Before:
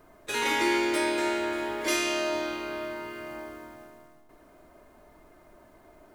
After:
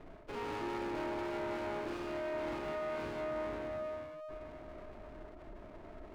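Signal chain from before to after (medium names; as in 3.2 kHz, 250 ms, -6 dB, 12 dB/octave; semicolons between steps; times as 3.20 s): CVSD coder 32 kbps; bass shelf 92 Hz +7 dB; on a send: echo that smears into a reverb 502 ms, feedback 49%, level -11 dB; on the sum: Schroeder reverb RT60 0.69 s, combs from 32 ms, DRR 9 dB; spectral gate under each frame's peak -25 dB strong; reverse; compression 6:1, threshold -36 dBFS, peak gain reduction 14 dB; reverse; hard clipper -36 dBFS, distortion -14 dB; steep low-pass 2.2 kHz; sliding maximum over 17 samples; trim +3.5 dB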